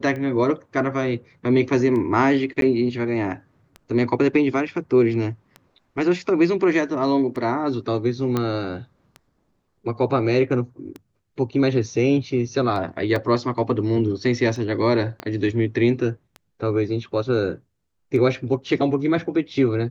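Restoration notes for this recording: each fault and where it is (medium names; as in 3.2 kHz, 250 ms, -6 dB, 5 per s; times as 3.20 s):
tick 33 1/3 rpm -22 dBFS
2.61–2.62 s: dropout 12 ms
8.37 s: pop -10 dBFS
13.16 s: dropout 2.8 ms
15.20 s: pop -16 dBFS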